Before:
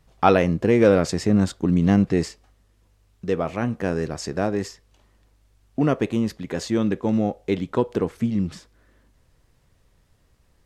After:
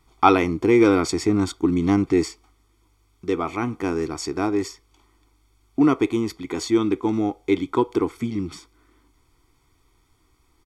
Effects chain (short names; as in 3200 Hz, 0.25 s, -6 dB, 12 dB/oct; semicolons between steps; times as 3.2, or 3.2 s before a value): resonant low shelf 250 Hz -7 dB, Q 3; comb 0.9 ms, depth 86%